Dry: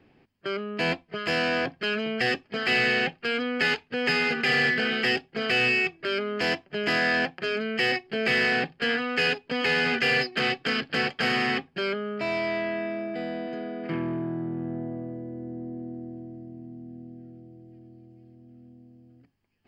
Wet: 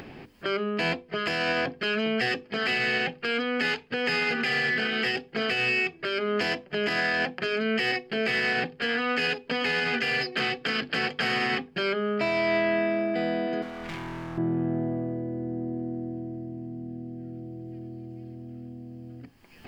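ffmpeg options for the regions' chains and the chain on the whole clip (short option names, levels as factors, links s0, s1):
-filter_complex "[0:a]asettb=1/sr,asplit=3[s0][s1][s2];[s0]atrim=end=13.624[s3];[s1]atrim=start=13.62:end=14.38,asetpts=PTS-STARTPTS,afade=t=in:d=0.004:c=qsin,afade=t=out:st=0.756:d=0.004:c=qsin,volume=56.2,asoftclip=hard,volume=0.0178,equalizer=f=400:w=0.71:g=-10[s4];[s2]atrim=start=14.376[s5];[s3][s4]acrossfade=d=0.004:c1=hsin:c2=qsin[s6];[s6][s5]acrossfade=d=0.004:c1=qsin:c2=hsin,alimiter=limit=0.075:level=0:latency=1:release=174,acompressor=mode=upward:threshold=0.0141:ratio=2.5,bandreject=f=50:t=h:w=6,bandreject=f=100:t=h:w=6,bandreject=f=150:t=h:w=6,bandreject=f=200:t=h:w=6,bandreject=f=250:t=h:w=6,bandreject=f=300:t=h:w=6,bandreject=f=350:t=h:w=6,bandreject=f=400:t=h:w=6,bandreject=f=450:t=h:w=6,bandreject=f=500:t=h:w=6,volume=1.88"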